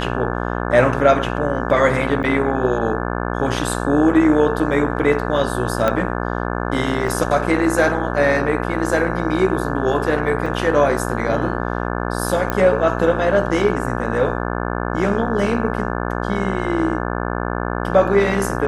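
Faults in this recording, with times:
buzz 60 Hz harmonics 29 -23 dBFS
2.23–2.24 gap 8.5 ms
5.88 pop -6 dBFS
7.08 gap 2.9 ms
10.46 gap 3.7 ms
12.5 pop -7 dBFS

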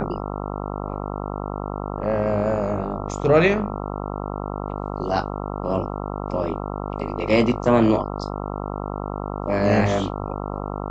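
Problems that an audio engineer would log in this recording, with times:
buzz 50 Hz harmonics 27 -29 dBFS

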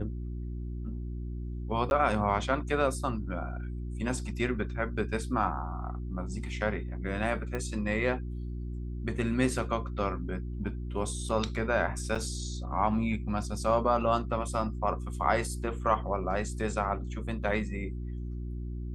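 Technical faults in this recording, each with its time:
hum 60 Hz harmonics 6 -36 dBFS
1.9–1.91 gap 11 ms
7.55 pop -21 dBFS
12.15–12.16 gap 5.9 ms

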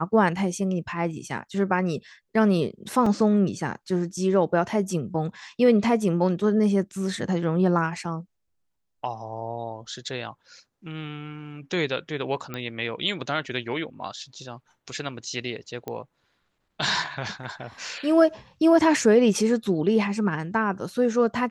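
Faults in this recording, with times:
3.06 gap 3.7 ms
12.54 pop -17 dBFS
15.88 pop -18 dBFS

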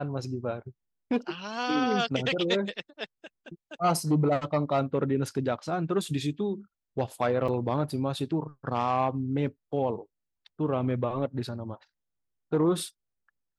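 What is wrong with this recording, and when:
7.48 gap 4 ms

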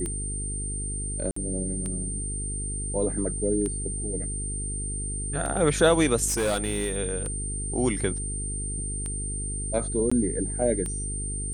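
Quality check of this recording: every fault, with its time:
buzz 50 Hz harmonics 9 -33 dBFS
tick 33 1/3 rpm -20 dBFS
tone 8900 Hz -32 dBFS
1.31–1.36 gap 54 ms
6.27–6.98 clipped -21.5 dBFS
10.1–10.12 gap 15 ms

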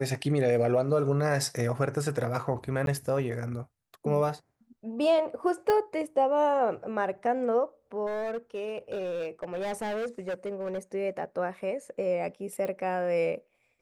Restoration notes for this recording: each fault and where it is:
2.86–2.87 gap
5.7 pop -14 dBFS
8.06–10.78 clipped -29 dBFS
12.65 pop -22 dBFS

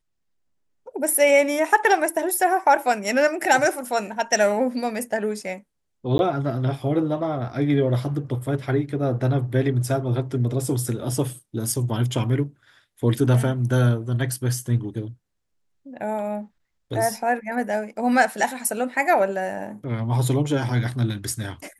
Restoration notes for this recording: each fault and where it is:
6.18–6.19 gap 11 ms

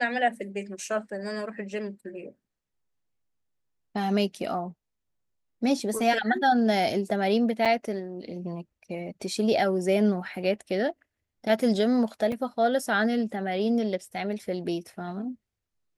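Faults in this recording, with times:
7.65–7.66 gap 6.2 ms
12.32 gap 3.3 ms

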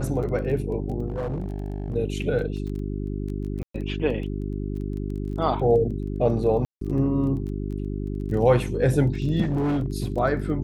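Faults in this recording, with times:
crackle 17/s -33 dBFS
hum 50 Hz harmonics 8 -29 dBFS
1.07–1.96 clipped -24.5 dBFS
3.63–3.74 gap 0.114 s
6.65–6.81 gap 0.163 s
9.41–9.86 clipped -20.5 dBFS

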